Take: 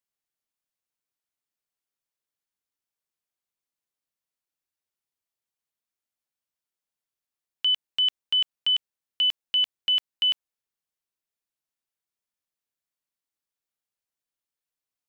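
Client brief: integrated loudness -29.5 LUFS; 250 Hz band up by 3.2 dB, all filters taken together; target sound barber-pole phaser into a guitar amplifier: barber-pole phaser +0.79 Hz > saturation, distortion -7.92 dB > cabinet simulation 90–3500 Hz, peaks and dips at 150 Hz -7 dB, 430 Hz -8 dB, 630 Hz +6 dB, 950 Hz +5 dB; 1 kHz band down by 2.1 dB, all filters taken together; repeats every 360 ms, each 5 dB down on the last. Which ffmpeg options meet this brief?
-filter_complex "[0:a]equalizer=f=250:t=o:g=6,equalizer=f=1000:t=o:g=-6.5,aecho=1:1:360|720|1080|1440|1800|2160|2520:0.562|0.315|0.176|0.0988|0.0553|0.031|0.0173,asplit=2[s0][s1];[s1]afreqshift=0.79[s2];[s0][s2]amix=inputs=2:normalize=1,asoftclip=threshold=0.0531,highpass=90,equalizer=f=150:t=q:w=4:g=-7,equalizer=f=430:t=q:w=4:g=-8,equalizer=f=630:t=q:w=4:g=6,equalizer=f=950:t=q:w=4:g=5,lowpass=f=3500:w=0.5412,lowpass=f=3500:w=1.3066,volume=1.26"

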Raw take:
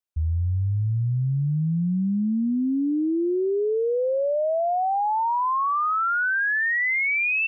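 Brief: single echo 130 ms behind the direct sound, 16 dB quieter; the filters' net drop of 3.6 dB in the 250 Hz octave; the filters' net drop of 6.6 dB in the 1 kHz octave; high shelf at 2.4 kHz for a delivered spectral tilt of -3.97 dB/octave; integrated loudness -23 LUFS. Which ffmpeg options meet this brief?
-af "equalizer=f=250:t=o:g=-4.5,equalizer=f=1000:t=o:g=-7,highshelf=f=2400:g=-7.5,aecho=1:1:130:0.158,volume=1.5"

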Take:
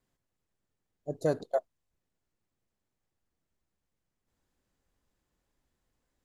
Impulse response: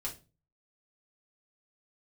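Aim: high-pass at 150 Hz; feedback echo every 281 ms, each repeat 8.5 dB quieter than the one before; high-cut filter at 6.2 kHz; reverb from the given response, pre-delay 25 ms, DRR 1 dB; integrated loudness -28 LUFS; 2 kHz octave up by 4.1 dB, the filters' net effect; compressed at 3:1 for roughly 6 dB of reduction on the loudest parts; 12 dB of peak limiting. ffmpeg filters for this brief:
-filter_complex "[0:a]highpass=150,lowpass=6200,equalizer=f=2000:t=o:g=6,acompressor=threshold=0.0316:ratio=3,alimiter=level_in=2.37:limit=0.0631:level=0:latency=1,volume=0.422,aecho=1:1:281|562|843|1124:0.376|0.143|0.0543|0.0206,asplit=2[s0][s1];[1:a]atrim=start_sample=2205,adelay=25[s2];[s1][s2]afir=irnorm=-1:irlink=0,volume=0.841[s3];[s0][s3]amix=inputs=2:normalize=0,volume=7.08"

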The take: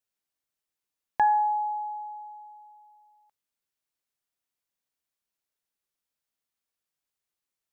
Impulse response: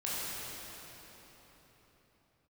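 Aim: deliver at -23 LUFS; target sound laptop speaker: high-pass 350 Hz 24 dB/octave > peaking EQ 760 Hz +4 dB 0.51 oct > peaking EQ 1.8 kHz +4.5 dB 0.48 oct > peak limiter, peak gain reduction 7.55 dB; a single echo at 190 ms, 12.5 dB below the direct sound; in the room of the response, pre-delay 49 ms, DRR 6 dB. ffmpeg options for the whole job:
-filter_complex "[0:a]aecho=1:1:190:0.237,asplit=2[s0][s1];[1:a]atrim=start_sample=2205,adelay=49[s2];[s1][s2]afir=irnorm=-1:irlink=0,volume=0.251[s3];[s0][s3]amix=inputs=2:normalize=0,highpass=f=350:w=0.5412,highpass=f=350:w=1.3066,equalizer=f=760:t=o:w=0.51:g=4,equalizer=f=1800:t=o:w=0.48:g=4.5,volume=1.19,alimiter=limit=0.15:level=0:latency=1"

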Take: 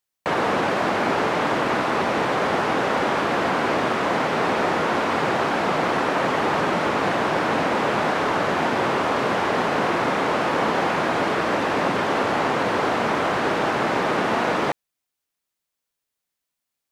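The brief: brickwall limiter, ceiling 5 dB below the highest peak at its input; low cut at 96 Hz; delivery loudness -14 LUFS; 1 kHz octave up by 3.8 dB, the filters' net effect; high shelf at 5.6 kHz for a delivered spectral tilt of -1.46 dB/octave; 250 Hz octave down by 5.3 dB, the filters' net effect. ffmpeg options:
-af "highpass=96,equalizer=f=250:t=o:g=-7.5,equalizer=f=1000:t=o:g=5,highshelf=f=5600:g=5.5,volume=2.37,alimiter=limit=0.562:level=0:latency=1"

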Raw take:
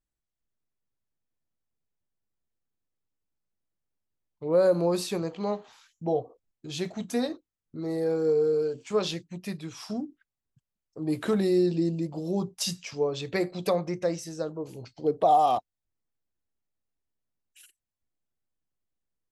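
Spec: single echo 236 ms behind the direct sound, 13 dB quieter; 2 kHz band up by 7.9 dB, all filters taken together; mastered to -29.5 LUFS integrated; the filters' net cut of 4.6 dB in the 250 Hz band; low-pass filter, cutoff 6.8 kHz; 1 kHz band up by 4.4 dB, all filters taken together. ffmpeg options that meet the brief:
-af "lowpass=6800,equalizer=f=250:t=o:g=-8.5,equalizer=f=1000:t=o:g=6.5,equalizer=f=2000:t=o:g=8,aecho=1:1:236:0.224,volume=0.75"

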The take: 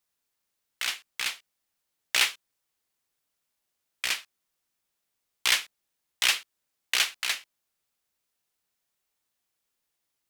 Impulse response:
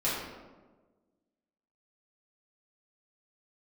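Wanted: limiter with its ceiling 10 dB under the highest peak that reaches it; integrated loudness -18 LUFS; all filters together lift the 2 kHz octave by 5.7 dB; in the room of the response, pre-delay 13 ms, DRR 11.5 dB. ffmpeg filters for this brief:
-filter_complex "[0:a]equalizer=f=2000:t=o:g=7,alimiter=limit=0.237:level=0:latency=1,asplit=2[s0][s1];[1:a]atrim=start_sample=2205,adelay=13[s2];[s1][s2]afir=irnorm=-1:irlink=0,volume=0.0944[s3];[s0][s3]amix=inputs=2:normalize=0,volume=2.99"

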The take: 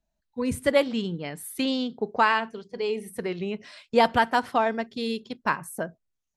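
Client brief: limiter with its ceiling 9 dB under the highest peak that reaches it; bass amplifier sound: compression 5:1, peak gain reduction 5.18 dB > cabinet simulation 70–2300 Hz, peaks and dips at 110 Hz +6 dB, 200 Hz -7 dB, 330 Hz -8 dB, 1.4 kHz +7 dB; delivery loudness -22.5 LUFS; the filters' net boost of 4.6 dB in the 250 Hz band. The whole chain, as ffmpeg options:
-af "equalizer=f=250:t=o:g=9,alimiter=limit=0.2:level=0:latency=1,acompressor=threshold=0.0794:ratio=5,highpass=f=70:w=0.5412,highpass=f=70:w=1.3066,equalizer=f=110:t=q:w=4:g=6,equalizer=f=200:t=q:w=4:g=-7,equalizer=f=330:t=q:w=4:g=-8,equalizer=f=1400:t=q:w=4:g=7,lowpass=f=2300:w=0.5412,lowpass=f=2300:w=1.3066,volume=2.51"

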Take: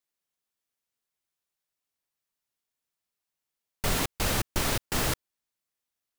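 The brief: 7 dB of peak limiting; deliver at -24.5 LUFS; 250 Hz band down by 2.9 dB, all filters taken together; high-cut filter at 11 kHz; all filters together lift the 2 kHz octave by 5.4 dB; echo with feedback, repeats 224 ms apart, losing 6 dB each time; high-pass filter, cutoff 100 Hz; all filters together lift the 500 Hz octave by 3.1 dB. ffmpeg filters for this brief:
-af "highpass=100,lowpass=11000,equalizer=f=250:t=o:g=-5.5,equalizer=f=500:t=o:g=5,equalizer=f=2000:t=o:g=6.5,alimiter=limit=0.0944:level=0:latency=1,aecho=1:1:224|448|672|896|1120|1344:0.501|0.251|0.125|0.0626|0.0313|0.0157,volume=2"

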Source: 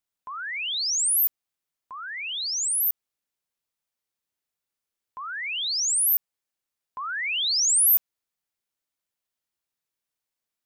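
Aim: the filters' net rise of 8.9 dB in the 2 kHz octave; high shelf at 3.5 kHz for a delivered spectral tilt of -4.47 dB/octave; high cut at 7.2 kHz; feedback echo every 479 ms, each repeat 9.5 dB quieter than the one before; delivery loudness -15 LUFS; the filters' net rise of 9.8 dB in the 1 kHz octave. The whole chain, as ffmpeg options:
-af "lowpass=7200,equalizer=f=1000:t=o:g=9,equalizer=f=2000:t=o:g=7.5,highshelf=f=3500:g=3.5,aecho=1:1:479|958|1437|1916:0.335|0.111|0.0365|0.012,volume=2.37"

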